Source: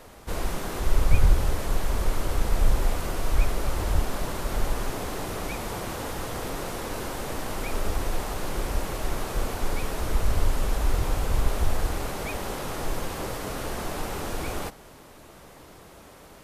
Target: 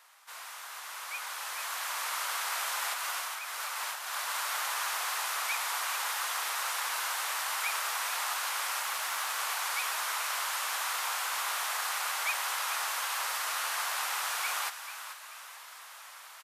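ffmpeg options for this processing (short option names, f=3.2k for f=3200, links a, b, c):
-filter_complex "[0:a]asplit=3[a][b][c];[a]afade=t=out:st=2.93:d=0.02[d];[b]acompressor=threshold=-24dB:ratio=6,afade=t=in:st=2.93:d=0.02,afade=t=out:st=4.33:d=0.02[e];[c]afade=t=in:st=4.33:d=0.02[f];[d][e][f]amix=inputs=3:normalize=0,highpass=f=1k:w=0.5412,highpass=f=1k:w=1.3066,asplit=5[g][h][i][j][k];[h]adelay=437,afreqshift=69,volume=-11dB[l];[i]adelay=874,afreqshift=138,volume=-19.4dB[m];[j]adelay=1311,afreqshift=207,volume=-27.8dB[n];[k]adelay=1748,afreqshift=276,volume=-36.2dB[o];[g][l][m][n][o]amix=inputs=5:normalize=0,dynaudnorm=f=150:g=21:m=11dB,asettb=1/sr,asplit=3[p][q][r];[p]atrim=end=8.804[s];[q]atrim=start=8.8:end=9.39,asetpts=PTS-STARTPTS,afade=t=in:d=0.004:c=qsin,afade=t=out:st=0.586:d=0.004:c=qsin,aeval=exprs='sgn(val(0))*max(abs(val(0))-0.00376,0)':c=same[t];[r]atrim=start=9.386[u];[s][t]acrossfade=d=0.004:c1=hsin:c2=qsin[v];[v][u]acrossfade=d=0.004:c1=qsin:c2=hsin,volume=-6dB"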